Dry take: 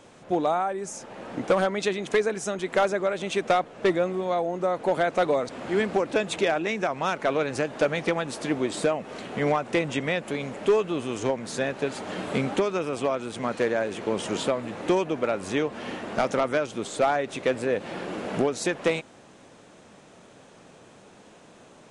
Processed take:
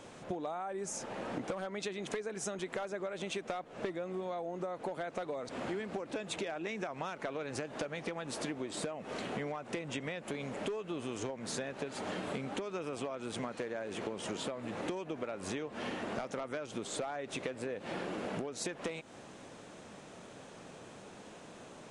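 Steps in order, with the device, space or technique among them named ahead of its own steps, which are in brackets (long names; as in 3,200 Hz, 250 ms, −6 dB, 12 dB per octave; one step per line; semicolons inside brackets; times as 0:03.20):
serial compression, leveller first (downward compressor 2 to 1, threshold −27 dBFS, peak gain reduction 6 dB; downward compressor 10 to 1, threshold −35 dBFS, peak gain reduction 13 dB)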